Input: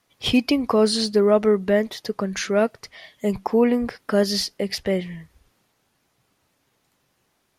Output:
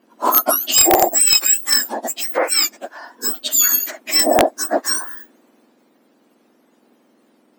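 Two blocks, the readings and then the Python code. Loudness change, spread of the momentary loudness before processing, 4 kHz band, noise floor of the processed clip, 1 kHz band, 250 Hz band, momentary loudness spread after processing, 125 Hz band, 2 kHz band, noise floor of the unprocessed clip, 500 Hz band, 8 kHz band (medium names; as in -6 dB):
+6.5 dB, 10 LU, +9.0 dB, -58 dBFS, +10.5 dB, -6.0 dB, 12 LU, -11.0 dB, +6.5 dB, -70 dBFS, -1.5 dB, +20.5 dB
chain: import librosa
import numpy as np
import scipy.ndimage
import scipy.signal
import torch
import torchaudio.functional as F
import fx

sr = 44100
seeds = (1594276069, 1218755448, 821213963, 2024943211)

y = fx.octave_mirror(x, sr, pivot_hz=1800.0)
y = (np.mod(10.0 ** (12.0 / 20.0) * y + 1.0, 2.0) - 1.0) / 10.0 ** (12.0 / 20.0)
y = y * librosa.db_to_amplitude(9.0)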